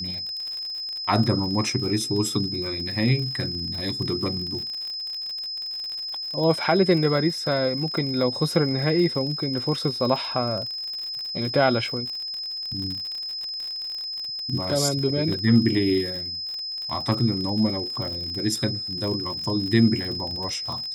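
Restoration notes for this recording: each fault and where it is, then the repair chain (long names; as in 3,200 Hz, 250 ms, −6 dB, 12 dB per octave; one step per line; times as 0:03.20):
surface crackle 55 per second −30 dBFS
whistle 5,100 Hz −29 dBFS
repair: click removal
notch filter 5,100 Hz, Q 30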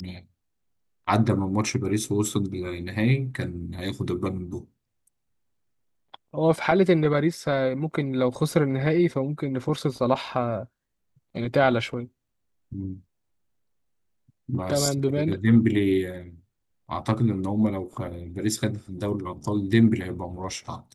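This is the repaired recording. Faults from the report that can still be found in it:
none of them is left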